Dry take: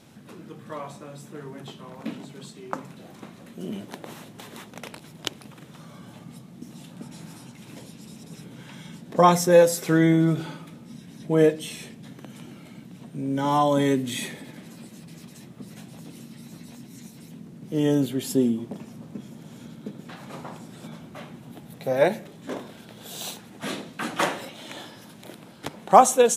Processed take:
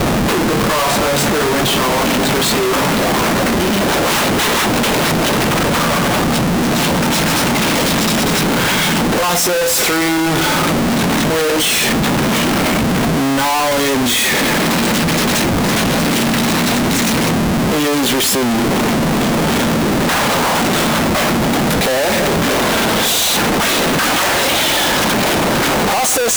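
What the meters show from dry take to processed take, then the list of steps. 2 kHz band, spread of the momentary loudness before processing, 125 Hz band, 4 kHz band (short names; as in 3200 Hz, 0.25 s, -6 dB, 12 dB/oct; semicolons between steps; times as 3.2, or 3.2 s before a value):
+21.0 dB, 24 LU, +13.0 dB, +22.5 dB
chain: overdrive pedal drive 36 dB, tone 7300 Hz, clips at -1 dBFS; Schmitt trigger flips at -25 dBFS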